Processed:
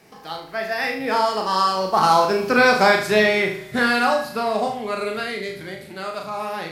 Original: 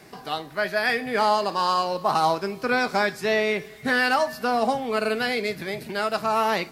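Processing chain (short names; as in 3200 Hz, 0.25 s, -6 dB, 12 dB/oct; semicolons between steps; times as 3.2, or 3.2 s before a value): Doppler pass-by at 2.73, 22 m/s, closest 18 m; flutter echo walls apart 6.4 m, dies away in 0.48 s; gain +6.5 dB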